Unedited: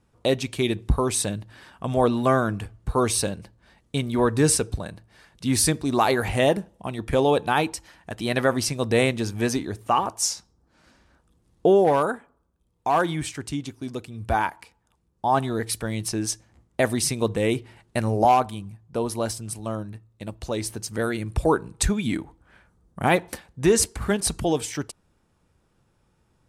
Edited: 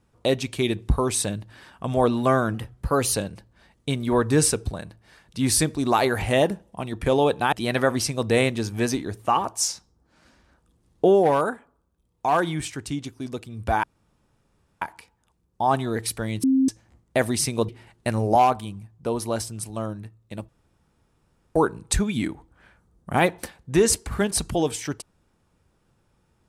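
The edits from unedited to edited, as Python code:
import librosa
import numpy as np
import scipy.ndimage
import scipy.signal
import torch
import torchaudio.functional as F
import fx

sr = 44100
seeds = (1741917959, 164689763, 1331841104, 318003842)

y = fx.edit(x, sr, fx.speed_span(start_s=2.54, length_s=0.66, speed=1.11),
    fx.cut(start_s=7.59, length_s=0.55),
    fx.insert_room_tone(at_s=14.45, length_s=0.98),
    fx.bleep(start_s=16.07, length_s=0.25, hz=265.0, db=-15.5),
    fx.cut(start_s=17.32, length_s=0.26),
    fx.room_tone_fill(start_s=20.38, length_s=1.07), tone=tone)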